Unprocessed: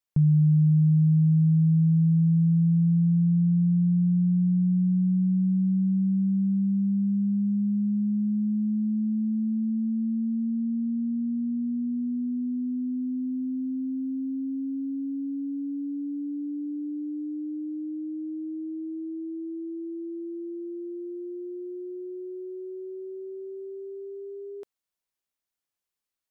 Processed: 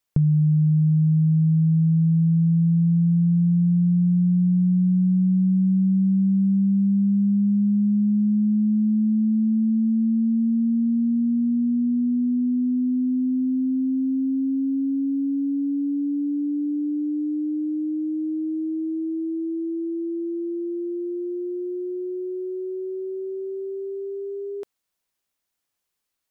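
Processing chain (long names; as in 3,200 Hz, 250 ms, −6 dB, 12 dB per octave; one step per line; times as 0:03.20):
downward compressor 4 to 1, threshold −25 dBFS, peak gain reduction 6.5 dB
level +7.5 dB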